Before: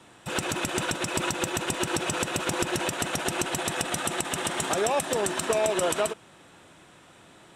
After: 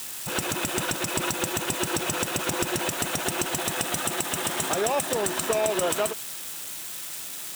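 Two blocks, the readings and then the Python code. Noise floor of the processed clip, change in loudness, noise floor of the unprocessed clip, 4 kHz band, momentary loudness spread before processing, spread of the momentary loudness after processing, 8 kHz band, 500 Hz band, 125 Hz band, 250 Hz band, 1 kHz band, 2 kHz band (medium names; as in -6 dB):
-36 dBFS, +1.0 dB, -54 dBFS, +1.5 dB, 3 LU, 8 LU, +3.0 dB, 0.0 dB, 0.0 dB, 0.0 dB, 0.0 dB, +0.5 dB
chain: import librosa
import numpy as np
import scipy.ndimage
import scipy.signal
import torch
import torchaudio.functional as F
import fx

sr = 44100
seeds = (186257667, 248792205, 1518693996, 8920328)

y = x + 0.5 * 10.0 ** (-26.5 / 20.0) * np.diff(np.sign(x), prepend=np.sign(x[:1]))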